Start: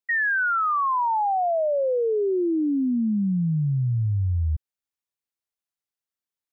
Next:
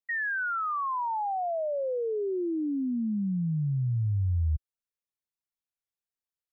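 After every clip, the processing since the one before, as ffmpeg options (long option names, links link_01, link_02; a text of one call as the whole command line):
ffmpeg -i in.wav -af "lowshelf=frequency=90:gain=8.5,volume=-7.5dB" out.wav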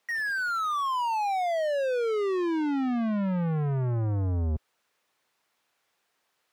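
ffmpeg -i in.wav -filter_complex "[0:a]asplit=2[link_01][link_02];[link_02]highpass=frequency=720:poles=1,volume=36dB,asoftclip=type=tanh:threshold=-22dB[link_03];[link_01][link_03]amix=inputs=2:normalize=0,lowpass=frequency=1500:poles=1,volume=-6dB" out.wav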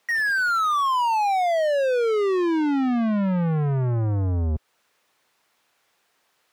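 ffmpeg -i in.wav -af "alimiter=level_in=1.5dB:limit=-24dB:level=0:latency=1:release=199,volume=-1.5dB,volume=7dB" out.wav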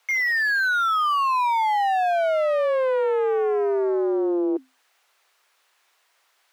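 ffmpeg -i in.wav -filter_complex "[0:a]asplit=2[link_01][link_02];[link_02]asoftclip=type=hard:threshold=-30dB,volume=-4.5dB[link_03];[link_01][link_03]amix=inputs=2:normalize=0,afreqshift=260,volume=-1.5dB" out.wav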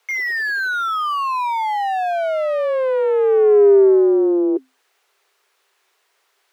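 ffmpeg -i in.wav -af "equalizer=frequency=400:width=3.6:gain=12.5" out.wav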